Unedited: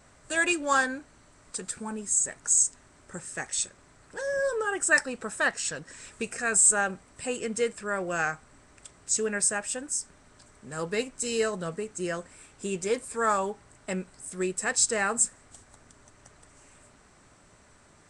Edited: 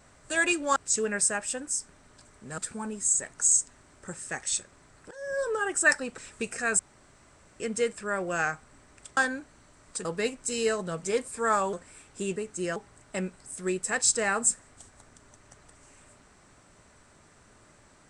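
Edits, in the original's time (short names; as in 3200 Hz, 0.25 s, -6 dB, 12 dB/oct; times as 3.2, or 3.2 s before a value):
0.76–1.64 swap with 8.97–10.79
4.17–4.56 fade in, from -18 dB
5.24–5.98 cut
6.59–7.4 room tone
11.77–12.17 swap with 12.8–13.5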